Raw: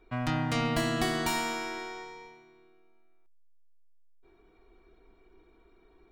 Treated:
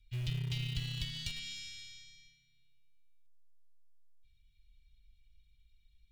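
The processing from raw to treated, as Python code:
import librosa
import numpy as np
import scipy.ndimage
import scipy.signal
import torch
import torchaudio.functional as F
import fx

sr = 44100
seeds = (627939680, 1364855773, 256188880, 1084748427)

p1 = scipy.signal.sosfilt(scipy.signal.ellip(3, 1.0, 60, [120.0, 3100.0], 'bandstop', fs=sr, output='sos'), x)
p2 = fx.env_lowpass_down(p1, sr, base_hz=1600.0, full_db=-30.0)
p3 = np.where(np.abs(p2) >= 10.0 ** (-35.0 / 20.0), p2, 0.0)
y = p2 + (p3 * 10.0 ** (-11.5 / 20.0))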